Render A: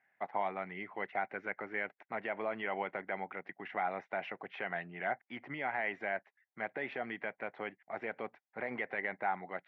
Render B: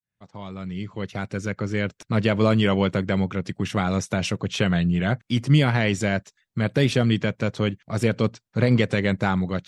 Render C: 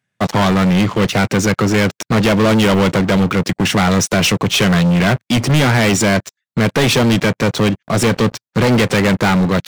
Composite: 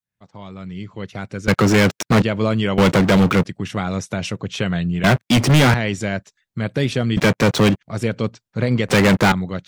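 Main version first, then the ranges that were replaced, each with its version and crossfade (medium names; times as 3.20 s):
B
1.48–2.22 s: from C
2.78–3.45 s: from C
5.04–5.74 s: from C
7.17–7.81 s: from C
8.88–9.32 s: from C
not used: A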